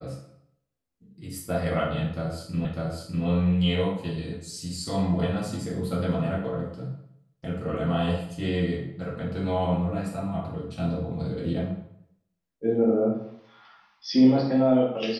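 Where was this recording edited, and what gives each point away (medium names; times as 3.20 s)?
2.65 s: repeat of the last 0.6 s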